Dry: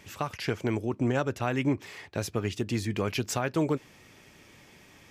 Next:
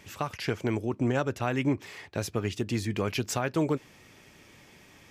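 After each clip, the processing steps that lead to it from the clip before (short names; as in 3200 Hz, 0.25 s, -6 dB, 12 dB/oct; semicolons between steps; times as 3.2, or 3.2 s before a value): nothing audible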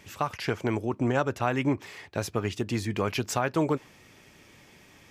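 dynamic EQ 980 Hz, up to +5 dB, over -43 dBFS, Q 0.92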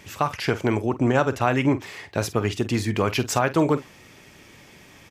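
doubler 47 ms -14 dB; gain +5.5 dB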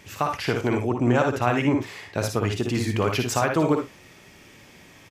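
early reflections 58 ms -5.5 dB, 75 ms -10.5 dB; gain -2 dB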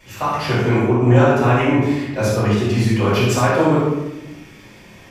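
reverb RT60 1.0 s, pre-delay 3 ms, DRR -11 dB; gain -7 dB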